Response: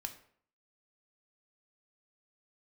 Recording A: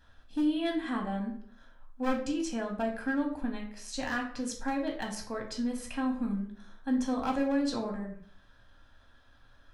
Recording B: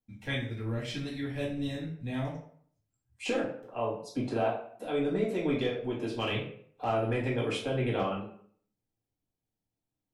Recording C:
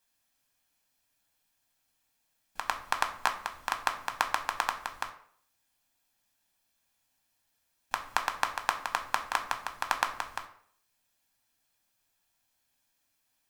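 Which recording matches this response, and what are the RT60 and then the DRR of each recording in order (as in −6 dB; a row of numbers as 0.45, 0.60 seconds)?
C; 0.60, 0.60, 0.60 seconds; 0.5, −5.0, 5.5 decibels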